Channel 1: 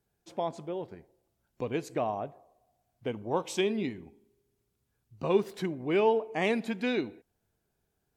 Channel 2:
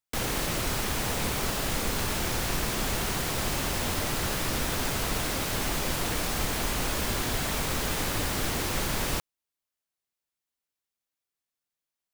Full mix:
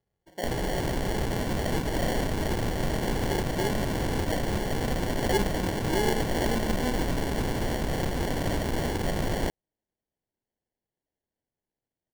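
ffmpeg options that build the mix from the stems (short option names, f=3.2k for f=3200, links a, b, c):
-filter_complex "[0:a]flanger=delay=1.6:depth=3.8:regen=-47:speed=0.25:shape=sinusoidal,volume=1dB[a];[1:a]adelay=300,volume=2dB[b];[a][b]amix=inputs=2:normalize=0,lowpass=f=6.5k:w=0.5412,lowpass=f=6.5k:w=1.3066,acrusher=samples=35:mix=1:aa=0.000001"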